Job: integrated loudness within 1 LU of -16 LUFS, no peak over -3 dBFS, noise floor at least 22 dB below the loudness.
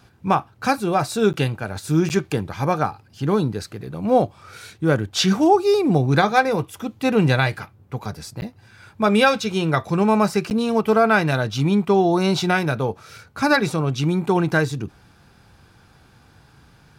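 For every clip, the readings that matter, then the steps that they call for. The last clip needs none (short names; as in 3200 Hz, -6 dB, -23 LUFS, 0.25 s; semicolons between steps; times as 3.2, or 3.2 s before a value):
dropouts 4; longest dropout 9.7 ms; loudness -20.0 LUFS; peak -3.0 dBFS; loudness target -16.0 LUFS
-> interpolate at 1.33/2.09/8.41/10.5, 9.7 ms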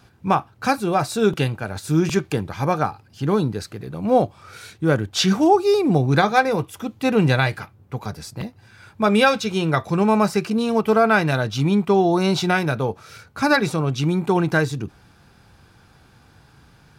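dropouts 0; loudness -20.0 LUFS; peak -3.0 dBFS; loudness target -16.0 LUFS
-> gain +4 dB; limiter -3 dBFS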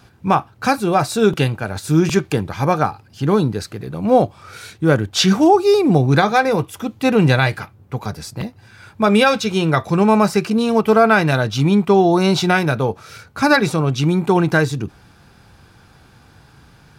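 loudness -16.5 LUFS; peak -3.0 dBFS; noise floor -50 dBFS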